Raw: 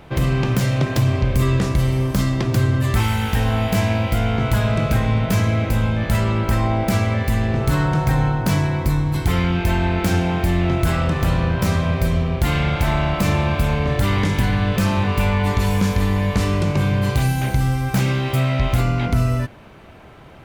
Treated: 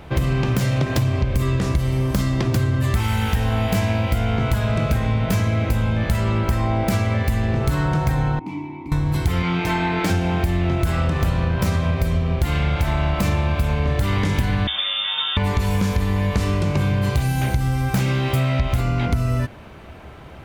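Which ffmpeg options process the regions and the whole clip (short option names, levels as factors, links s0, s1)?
-filter_complex "[0:a]asettb=1/sr,asplit=3[s0][s1][s2];[s0]atrim=end=8.394[s3];[s1]atrim=start=8.39:end=8.92,asetpts=PTS-STARTPTS,afade=t=in:d=0.004:c=qsin,afade=t=out:st=0.526:d=0.004:c=qsin,asplit=3[s4][s5][s6];[s4]bandpass=f=300:t=q:w=8,volume=1[s7];[s5]bandpass=f=870:t=q:w=8,volume=0.501[s8];[s6]bandpass=f=2240:t=q:w=8,volume=0.355[s9];[s7][s8][s9]amix=inputs=3:normalize=0,equalizer=f=1400:w=4.2:g=-3[s10];[s2]atrim=start=8.916[s11];[s3][s10]acrossfade=d=0.004:c1=hsin:c2=qsin[s12];[s12][s11]acrossfade=d=0.004:c1=qsin:c2=hsin,asettb=1/sr,asplit=3[s13][s14][s15];[s13]atrim=end=9.424[s16];[s14]atrim=start=9.42:end=10.1,asetpts=PTS-STARTPTS,afade=t=in:d=0.004:c=qsin,afade=t=out:st=0.676:d=0.004:c=qsin,highpass=f=260:p=1,highshelf=f=9700:g=-10,aecho=1:1:6.6:0.73,atrim=end_sample=29988[s17];[s15]atrim=start=10.096[s18];[s16][s17]acrossfade=d=0.004:c1=hsin:c2=qsin[s19];[s19][s18]acrossfade=d=0.004:c1=qsin:c2=hsin,asettb=1/sr,asplit=3[s20][s21][s22];[s20]atrim=end=14.674[s23];[s21]atrim=start=14.67:end=15.37,asetpts=PTS-STARTPTS,afade=t=in:d=0.004:c=qsin,afade=t=out:st=0.696:d=0.004:c=qsin,acrossover=split=210|420[s24][s25][s26];[s24]acompressor=threshold=0.0447:ratio=4[s27];[s25]acompressor=threshold=0.0141:ratio=4[s28];[s26]acompressor=threshold=0.0316:ratio=4[s29];[s27][s28][s29]amix=inputs=3:normalize=0,asplit=2[s30][s31];[s31]adelay=14,volume=0.631[s32];[s30][s32]amix=inputs=2:normalize=0,atrim=end_sample=30870,lowpass=f=3100:t=q:w=0.5098,lowpass=f=3100:t=q:w=0.6013,lowpass=f=3100:t=q:w=0.9,lowpass=f=3100:t=q:w=2.563,afreqshift=-3700[s33];[s22]atrim=start=15.366[s34];[s23][s33]acrossfade=d=0.004:c1=hsin:c2=qsin[s35];[s35][s34]acrossfade=d=0.004:c1=qsin:c2=hsin,equalizer=f=70:w=3.7:g=8.5,acompressor=threshold=0.126:ratio=6,volume=1.26"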